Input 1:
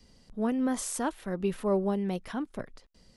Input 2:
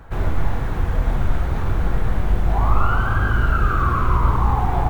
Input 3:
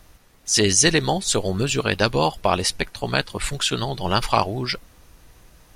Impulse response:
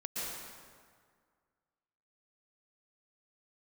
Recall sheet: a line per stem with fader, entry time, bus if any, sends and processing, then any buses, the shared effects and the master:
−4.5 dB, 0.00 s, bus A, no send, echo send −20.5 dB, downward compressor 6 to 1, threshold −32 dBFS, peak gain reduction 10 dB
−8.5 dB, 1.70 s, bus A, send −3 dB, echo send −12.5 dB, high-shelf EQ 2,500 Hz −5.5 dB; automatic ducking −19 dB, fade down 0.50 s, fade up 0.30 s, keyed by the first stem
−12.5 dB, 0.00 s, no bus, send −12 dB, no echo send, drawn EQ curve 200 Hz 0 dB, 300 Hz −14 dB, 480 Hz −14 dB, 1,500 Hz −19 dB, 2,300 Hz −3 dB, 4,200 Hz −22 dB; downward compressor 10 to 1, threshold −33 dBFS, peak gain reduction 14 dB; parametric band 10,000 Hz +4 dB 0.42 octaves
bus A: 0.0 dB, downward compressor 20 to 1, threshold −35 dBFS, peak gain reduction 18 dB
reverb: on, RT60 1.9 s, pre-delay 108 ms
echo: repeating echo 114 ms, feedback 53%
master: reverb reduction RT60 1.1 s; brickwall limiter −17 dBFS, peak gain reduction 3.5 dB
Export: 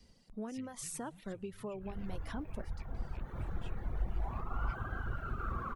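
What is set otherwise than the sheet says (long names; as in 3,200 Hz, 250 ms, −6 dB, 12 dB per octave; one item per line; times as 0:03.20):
stem 2 −8.5 dB → −20.0 dB
stem 3 −12.5 dB → −19.0 dB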